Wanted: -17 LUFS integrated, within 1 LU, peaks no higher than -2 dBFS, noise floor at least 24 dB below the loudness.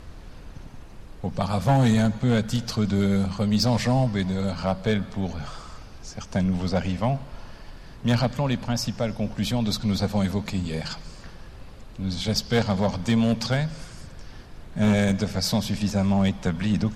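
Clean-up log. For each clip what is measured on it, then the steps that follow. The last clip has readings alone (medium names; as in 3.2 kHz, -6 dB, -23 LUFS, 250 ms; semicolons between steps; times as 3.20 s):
clipped samples 0.5%; clipping level -13.5 dBFS; noise floor -43 dBFS; noise floor target -49 dBFS; loudness -24.5 LUFS; peak level -13.5 dBFS; loudness target -17.0 LUFS
-> clip repair -13.5 dBFS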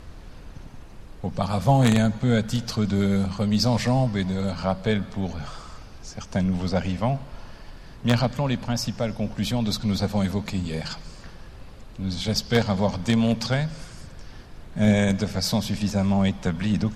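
clipped samples 0.0%; noise floor -43 dBFS; noise floor target -49 dBFS
-> noise print and reduce 6 dB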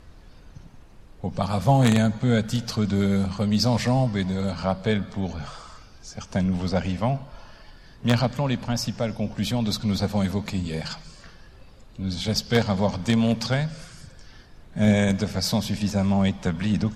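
noise floor -49 dBFS; loudness -24.0 LUFS; peak level -4.5 dBFS; loudness target -17.0 LUFS
-> trim +7 dB; peak limiter -2 dBFS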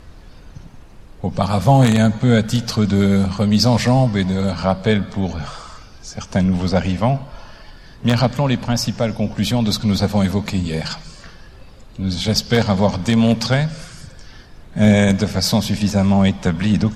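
loudness -17.5 LUFS; peak level -2.0 dBFS; noise floor -42 dBFS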